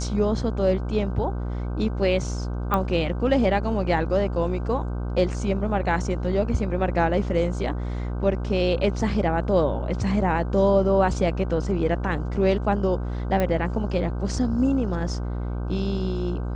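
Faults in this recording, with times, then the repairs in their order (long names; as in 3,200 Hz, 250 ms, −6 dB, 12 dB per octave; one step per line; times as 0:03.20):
mains buzz 60 Hz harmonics 26 −28 dBFS
0:02.74: click −11 dBFS
0:13.40: click −12 dBFS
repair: click removal
hum removal 60 Hz, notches 26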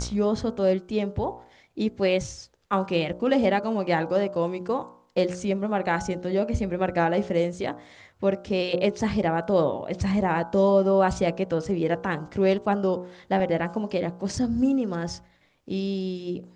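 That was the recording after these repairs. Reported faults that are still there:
none of them is left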